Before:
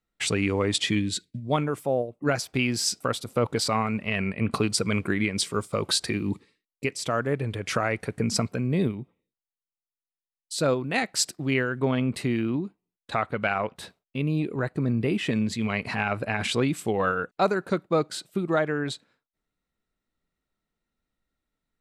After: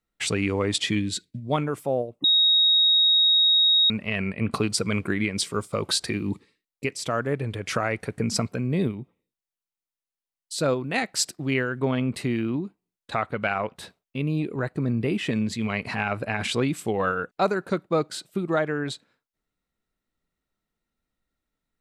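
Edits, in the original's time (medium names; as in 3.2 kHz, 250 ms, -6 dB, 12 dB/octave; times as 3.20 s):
2.24–3.90 s: bleep 3.77 kHz -15.5 dBFS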